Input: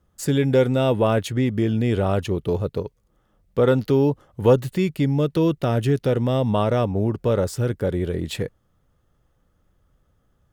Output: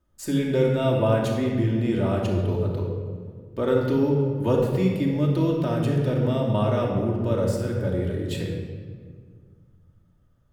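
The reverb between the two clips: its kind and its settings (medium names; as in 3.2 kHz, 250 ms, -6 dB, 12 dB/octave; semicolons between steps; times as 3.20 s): simulated room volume 2400 m³, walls mixed, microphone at 2.7 m; trim -7.5 dB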